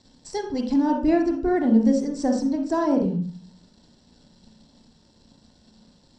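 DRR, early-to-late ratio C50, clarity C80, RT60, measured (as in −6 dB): 2.0 dB, 6.0 dB, 10.5 dB, 0.40 s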